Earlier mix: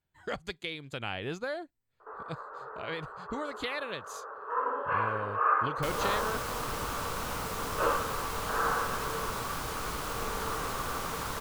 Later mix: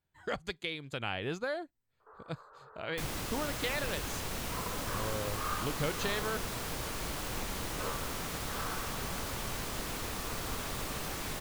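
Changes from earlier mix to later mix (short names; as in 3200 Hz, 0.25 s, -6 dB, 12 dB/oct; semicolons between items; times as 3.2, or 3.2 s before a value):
first sound -12.0 dB; second sound: entry -2.85 s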